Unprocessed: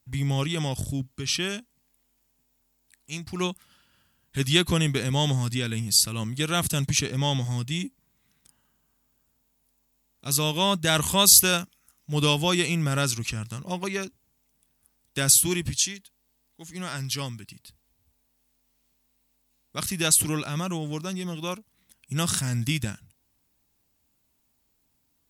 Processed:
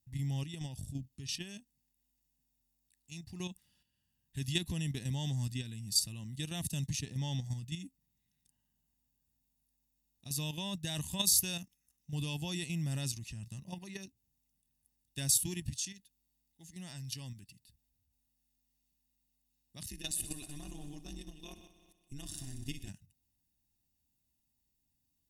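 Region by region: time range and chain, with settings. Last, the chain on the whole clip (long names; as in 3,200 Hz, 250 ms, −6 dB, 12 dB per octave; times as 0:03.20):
0:19.88–0:22.89: amplitude modulation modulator 140 Hz, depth 100% + comb filter 2.8 ms, depth 42% + echo machine with several playback heads 62 ms, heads all three, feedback 54%, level −16.5 dB
whole clip: output level in coarse steps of 9 dB; parametric band 1,200 Hz −14.5 dB 1.3 octaves; comb filter 1.1 ms, depth 53%; level −9 dB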